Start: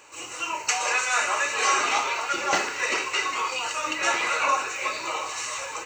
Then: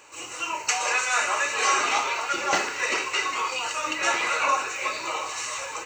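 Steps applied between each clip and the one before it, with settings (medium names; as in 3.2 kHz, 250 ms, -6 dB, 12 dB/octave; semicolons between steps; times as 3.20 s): no audible change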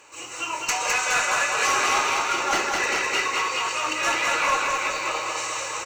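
one-sided clip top -20 dBFS; feedback delay 208 ms, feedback 56%, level -3 dB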